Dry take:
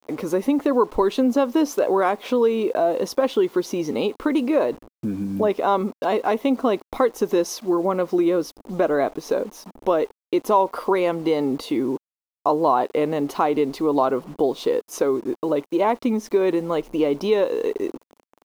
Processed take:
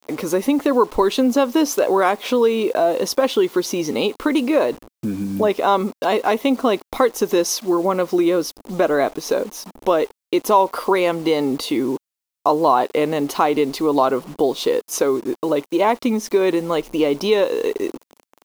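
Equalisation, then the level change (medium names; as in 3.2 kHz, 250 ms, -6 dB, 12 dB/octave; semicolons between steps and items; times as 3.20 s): treble shelf 2 kHz +8 dB; +2.0 dB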